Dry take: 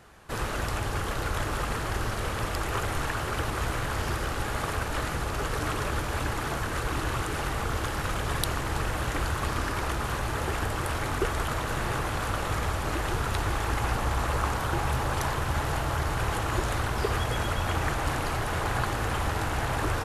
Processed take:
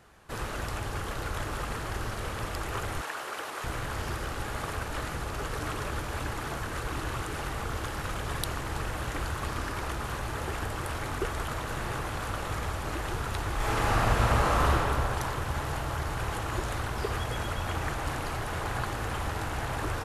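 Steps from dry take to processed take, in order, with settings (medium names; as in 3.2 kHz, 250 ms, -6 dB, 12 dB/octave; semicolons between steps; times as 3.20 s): 3.01–3.64 s: high-pass 440 Hz 12 dB/octave; 13.55–14.71 s: reverb throw, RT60 2.5 s, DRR -7 dB; trim -4 dB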